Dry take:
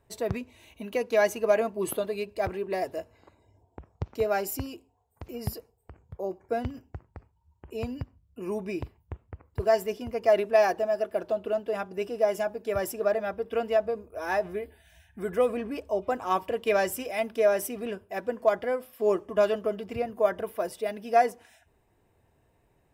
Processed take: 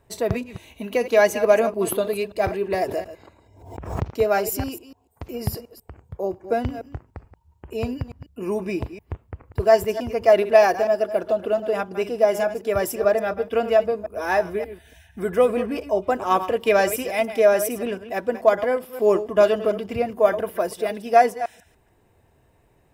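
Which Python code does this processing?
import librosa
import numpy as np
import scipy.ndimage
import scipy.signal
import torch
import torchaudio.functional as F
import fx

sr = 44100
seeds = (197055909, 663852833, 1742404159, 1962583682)

y = fx.reverse_delay(x, sr, ms=145, wet_db=-12.0)
y = fx.pre_swell(y, sr, db_per_s=74.0, at=(2.81, 4.11))
y = y * librosa.db_to_amplitude(6.5)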